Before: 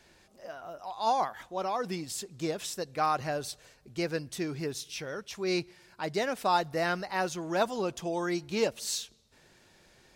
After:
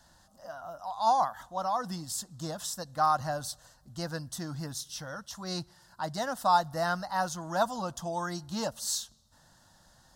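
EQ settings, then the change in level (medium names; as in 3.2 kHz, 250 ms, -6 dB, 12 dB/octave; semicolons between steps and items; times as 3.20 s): static phaser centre 980 Hz, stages 4; +3.5 dB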